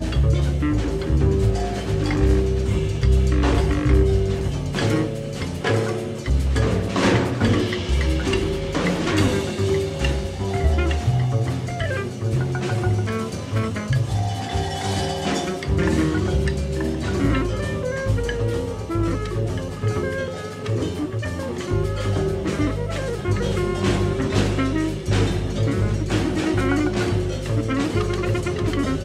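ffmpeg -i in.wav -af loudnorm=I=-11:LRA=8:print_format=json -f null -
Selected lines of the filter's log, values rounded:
"input_i" : "-22.5",
"input_tp" : "-4.6",
"input_lra" : "3.5",
"input_thresh" : "-32.5",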